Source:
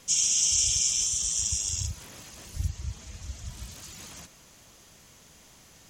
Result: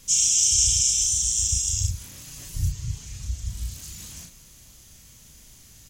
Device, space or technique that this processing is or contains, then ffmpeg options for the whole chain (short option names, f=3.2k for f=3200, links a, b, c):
smiley-face EQ: -filter_complex "[0:a]lowshelf=f=94:g=6.5,equalizer=f=740:t=o:w=2.7:g=-8.5,highshelf=f=7.4k:g=8.5,asettb=1/sr,asplit=3[a][b][c];[a]atrim=end=2.274[d];[b]atrim=start=2.27:end=3.25,asetpts=PTS-STARTPTS,afade=t=in:d=0.004:c=qsin,afade=t=out:st=0.976:d=0.004:c=qsin,aecho=1:1:7.1:0.74,atrim=end_sample=43218[e];[c]atrim=start=3.246[f];[d][e]acrossfade=d=0.004:c1=hsin:c2=qsin[g];[g][f]acrossfade=d=0.004:c1=qsin:c2=hsin,lowshelf=f=150:g=4.5,asplit=2[h][i];[i]adelay=34,volume=-4dB[j];[h][j]amix=inputs=2:normalize=0"